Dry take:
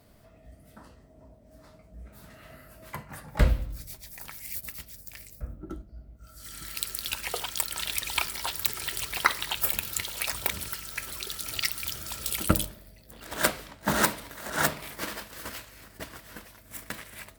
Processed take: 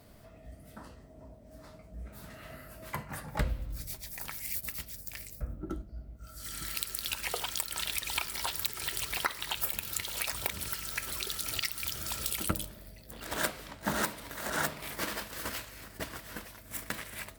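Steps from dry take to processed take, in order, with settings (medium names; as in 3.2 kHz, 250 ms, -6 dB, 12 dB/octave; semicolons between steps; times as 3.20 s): compression 3:1, threshold -33 dBFS, peak gain reduction 14 dB; trim +2 dB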